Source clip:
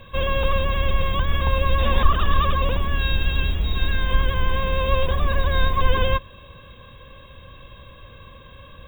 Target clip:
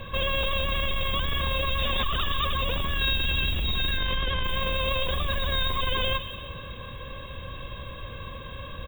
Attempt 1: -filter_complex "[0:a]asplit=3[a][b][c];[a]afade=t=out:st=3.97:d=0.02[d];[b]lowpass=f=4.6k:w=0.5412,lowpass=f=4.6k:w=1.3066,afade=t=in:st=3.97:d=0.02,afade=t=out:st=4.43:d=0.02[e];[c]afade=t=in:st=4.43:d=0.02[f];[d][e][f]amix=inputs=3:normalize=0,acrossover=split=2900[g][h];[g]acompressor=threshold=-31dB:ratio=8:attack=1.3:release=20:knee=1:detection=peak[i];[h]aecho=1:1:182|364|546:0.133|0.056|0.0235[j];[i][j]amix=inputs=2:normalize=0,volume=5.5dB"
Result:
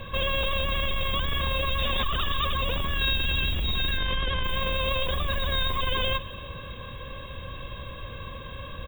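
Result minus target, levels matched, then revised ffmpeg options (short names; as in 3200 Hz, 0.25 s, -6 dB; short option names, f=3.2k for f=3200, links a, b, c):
echo-to-direct -8 dB
-filter_complex "[0:a]asplit=3[a][b][c];[a]afade=t=out:st=3.97:d=0.02[d];[b]lowpass=f=4.6k:w=0.5412,lowpass=f=4.6k:w=1.3066,afade=t=in:st=3.97:d=0.02,afade=t=out:st=4.43:d=0.02[e];[c]afade=t=in:st=4.43:d=0.02[f];[d][e][f]amix=inputs=3:normalize=0,acrossover=split=2900[g][h];[g]acompressor=threshold=-31dB:ratio=8:attack=1.3:release=20:knee=1:detection=peak[i];[h]aecho=1:1:182|364|546|728|910:0.335|0.141|0.0591|0.0248|0.0104[j];[i][j]amix=inputs=2:normalize=0,volume=5.5dB"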